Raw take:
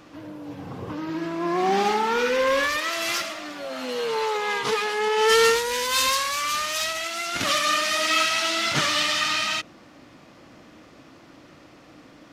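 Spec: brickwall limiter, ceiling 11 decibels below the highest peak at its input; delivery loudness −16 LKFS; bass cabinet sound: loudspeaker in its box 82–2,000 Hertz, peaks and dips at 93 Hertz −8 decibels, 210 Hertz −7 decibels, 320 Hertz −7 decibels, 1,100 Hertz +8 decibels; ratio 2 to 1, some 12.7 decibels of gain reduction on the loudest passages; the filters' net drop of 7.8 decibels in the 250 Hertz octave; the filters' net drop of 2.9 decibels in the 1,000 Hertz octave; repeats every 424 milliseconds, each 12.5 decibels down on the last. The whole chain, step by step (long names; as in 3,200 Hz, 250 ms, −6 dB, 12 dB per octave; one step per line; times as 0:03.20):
parametric band 250 Hz −3 dB
parametric band 1,000 Hz −8.5 dB
downward compressor 2 to 1, threshold −40 dBFS
brickwall limiter −32 dBFS
loudspeaker in its box 82–2,000 Hz, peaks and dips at 93 Hz −8 dB, 210 Hz −7 dB, 320 Hz −7 dB, 1,100 Hz +8 dB
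repeating echo 424 ms, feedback 24%, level −12.5 dB
level +26.5 dB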